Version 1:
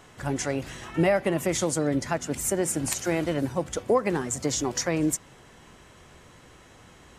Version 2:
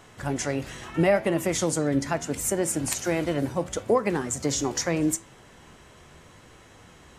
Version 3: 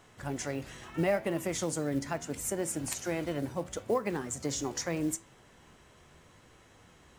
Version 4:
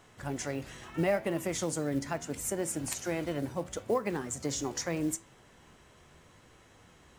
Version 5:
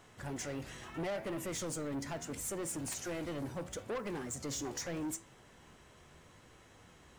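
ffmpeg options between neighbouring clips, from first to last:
ffmpeg -i in.wav -af "flanger=delay=8.9:depth=5.6:regen=82:speed=0.76:shape=sinusoidal,volume=5dB" out.wav
ffmpeg -i in.wav -af "acrusher=bits=7:mode=log:mix=0:aa=0.000001,volume=-7.5dB" out.wav
ffmpeg -i in.wav -af anull out.wav
ffmpeg -i in.wav -af "asoftclip=type=tanh:threshold=-33.5dB,volume=-1dB" out.wav

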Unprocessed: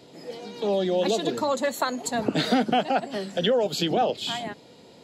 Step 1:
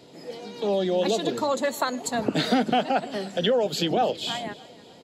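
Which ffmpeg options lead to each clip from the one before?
ffmpeg -i in.wav -af "aecho=1:1:301|602|903:0.0944|0.0415|0.0183" out.wav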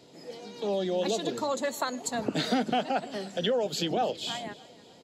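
ffmpeg -i in.wav -af "equalizer=frequency=6300:width_type=o:width=0.78:gain=4,volume=-5dB" out.wav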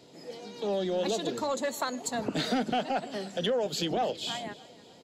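ffmpeg -i in.wav -af "asoftclip=type=tanh:threshold=-19.5dB" out.wav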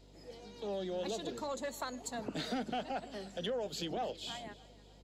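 ffmpeg -i in.wav -af "aeval=exprs='val(0)+0.00282*(sin(2*PI*50*n/s)+sin(2*PI*2*50*n/s)/2+sin(2*PI*3*50*n/s)/3+sin(2*PI*4*50*n/s)/4+sin(2*PI*5*50*n/s)/5)':channel_layout=same,volume=-8.5dB" out.wav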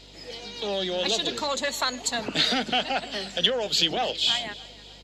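ffmpeg -i in.wav -af "equalizer=frequency=3300:width_type=o:width=2.5:gain=14.5,volume=7dB" out.wav

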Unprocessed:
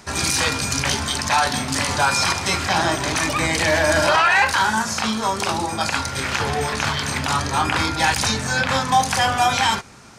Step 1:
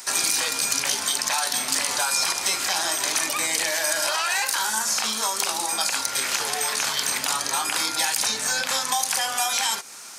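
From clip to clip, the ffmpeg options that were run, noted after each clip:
ffmpeg -i in.wav -filter_complex "[0:a]highpass=frequency=380:poles=1,aemphasis=mode=production:type=riaa,acrossover=split=690|4200[link_01][link_02][link_03];[link_01]acompressor=threshold=-35dB:ratio=4[link_04];[link_02]acompressor=threshold=-28dB:ratio=4[link_05];[link_03]acompressor=threshold=-25dB:ratio=4[link_06];[link_04][link_05][link_06]amix=inputs=3:normalize=0" out.wav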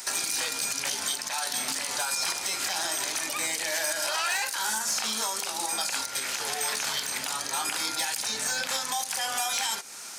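ffmpeg -i in.wav -af "equalizer=frequency=1100:width_type=o:width=0.23:gain=-4,alimiter=limit=-16.5dB:level=0:latency=1:release=305,asoftclip=type=hard:threshold=-20.5dB" out.wav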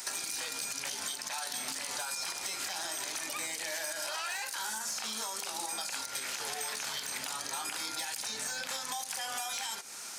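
ffmpeg -i in.wav -af "acompressor=threshold=-31dB:ratio=6,volume=-2.5dB" out.wav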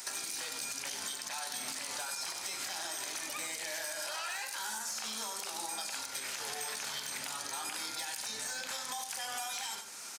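ffmpeg -i in.wav -af "aecho=1:1:95:0.376,volume=-2.5dB" out.wav

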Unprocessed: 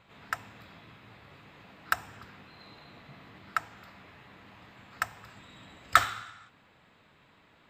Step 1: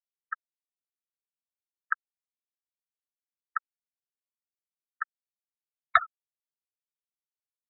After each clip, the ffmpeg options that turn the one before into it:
ffmpeg -i in.wav -af "afftfilt=real='re*gte(hypot(re,im),0.158)':imag='im*gte(hypot(re,im),0.158)':win_size=1024:overlap=0.75" out.wav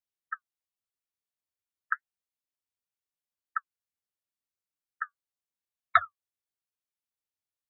ffmpeg -i in.wav -af "equalizer=frequency=92:width=3:gain=10,flanger=delay=2.9:depth=8.1:regen=-48:speed=0.88:shape=triangular,volume=3dB" out.wav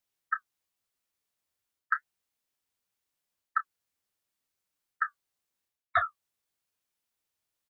ffmpeg -i in.wav -filter_complex "[0:a]areverse,acompressor=threshold=-32dB:ratio=12,areverse,asplit=2[link_01][link_02];[link_02]adelay=27,volume=-11dB[link_03];[link_01][link_03]amix=inputs=2:normalize=0,volume=8dB" out.wav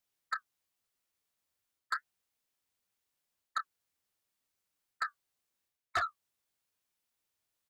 ffmpeg -i in.wav -af "asoftclip=type=tanh:threshold=-26.5dB" out.wav

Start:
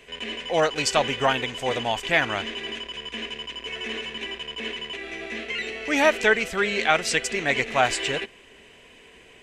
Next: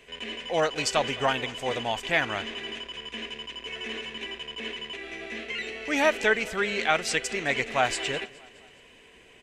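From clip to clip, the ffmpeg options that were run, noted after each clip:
ffmpeg -i in.wav -af "aecho=1:1:209|418|627|836:0.0794|0.0461|0.0267|0.0155,volume=-3.5dB" out.wav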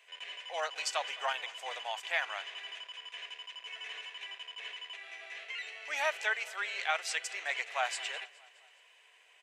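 ffmpeg -i in.wav -af "highpass=frequency=680:width=0.5412,highpass=frequency=680:width=1.3066,volume=-7dB" out.wav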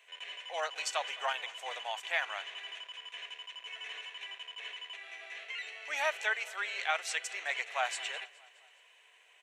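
ffmpeg -i in.wav -af "bandreject=frequency=4900:width=9.2" out.wav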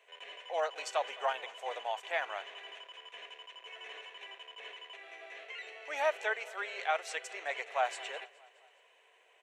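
ffmpeg -i in.wav -af "equalizer=frequency=430:width_type=o:width=2.7:gain=14,volume=-7dB" out.wav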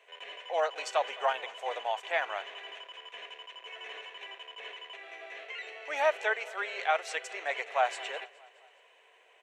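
ffmpeg -i in.wav -af "highshelf=frequency=7500:gain=-6,volume=4dB" out.wav

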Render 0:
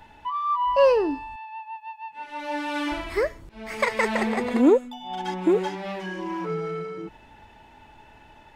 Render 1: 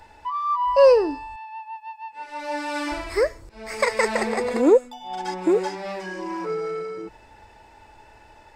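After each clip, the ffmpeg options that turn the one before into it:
ffmpeg -i in.wav -af "equalizer=frequency=160:width_type=o:width=0.33:gain=-12,equalizer=frequency=250:width_type=o:width=0.33:gain=-7,equalizer=frequency=500:width_type=o:width=0.33:gain=5,equalizer=frequency=3150:width_type=o:width=0.33:gain=-7,equalizer=frequency=5000:width_type=o:width=0.33:gain=8,equalizer=frequency=8000:width_type=o:width=0.33:gain=8,volume=1dB" out.wav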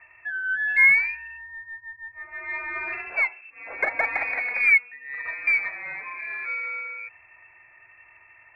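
ffmpeg -i in.wav -af "lowpass=frequency=2300:width_type=q:width=0.5098,lowpass=frequency=2300:width_type=q:width=0.6013,lowpass=frequency=2300:width_type=q:width=0.9,lowpass=frequency=2300:width_type=q:width=2.563,afreqshift=-2700,aeval=exprs='0.531*(cos(1*acos(clip(val(0)/0.531,-1,1)))-cos(1*PI/2))+0.00376*(cos(8*acos(clip(val(0)/0.531,-1,1)))-cos(8*PI/2))':channel_layout=same,volume=-3dB" out.wav

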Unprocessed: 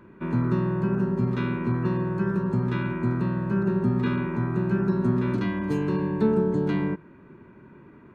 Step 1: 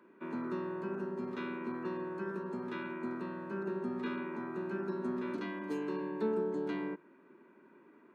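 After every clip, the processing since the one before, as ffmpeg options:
ffmpeg -i in.wav -af "highpass=frequency=250:width=0.5412,highpass=frequency=250:width=1.3066,volume=-8.5dB" out.wav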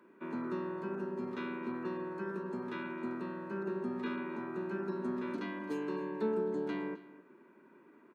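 ffmpeg -i in.wav -af "aecho=1:1:263:0.126" out.wav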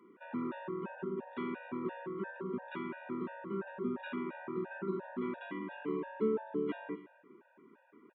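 ffmpeg -i in.wav -af "aresample=8000,aresample=44100,afftfilt=real='re*gt(sin(2*PI*2.9*pts/sr)*(1-2*mod(floor(b*sr/1024/480),2)),0)':imag='im*gt(sin(2*PI*2.9*pts/sr)*(1-2*mod(floor(b*sr/1024/480),2)),0)':win_size=1024:overlap=0.75,volume=2dB" out.wav

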